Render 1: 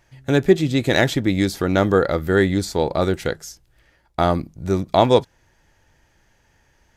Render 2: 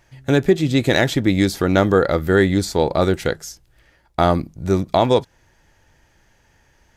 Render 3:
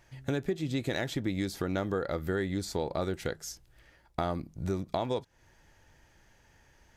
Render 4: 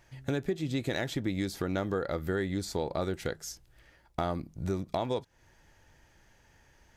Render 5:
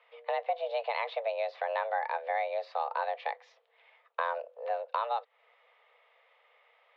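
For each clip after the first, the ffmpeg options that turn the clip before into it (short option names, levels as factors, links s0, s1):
-af "alimiter=limit=0.501:level=0:latency=1:release=188,volume=1.33"
-af "acompressor=threshold=0.0447:ratio=3,volume=0.596"
-af "volume=9.44,asoftclip=hard,volume=0.106"
-af "highpass=f=150:t=q:w=0.5412,highpass=f=150:t=q:w=1.307,lowpass=f=3300:t=q:w=0.5176,lowpass=f=3300:t=q:w=0.7071,lowpass=f=3300:t=q:w=1.932,afreqshift=340"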